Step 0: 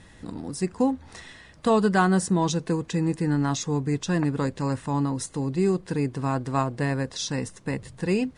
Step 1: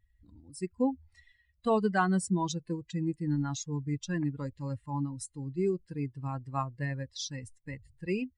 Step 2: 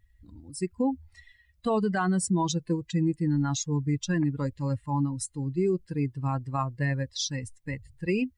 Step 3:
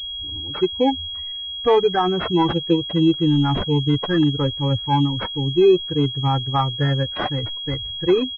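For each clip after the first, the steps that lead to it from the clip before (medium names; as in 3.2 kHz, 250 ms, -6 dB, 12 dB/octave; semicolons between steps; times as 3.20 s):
expander on every frequency bin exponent 2; trim -3.5 dB
peak limiter -25 dBFS, peak gain reduction 9.5 dB; trim +7 dB
comb 2.4 ms, depth 93%; class-D stage that switches slowly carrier 3.3 kHz; trim +8 dB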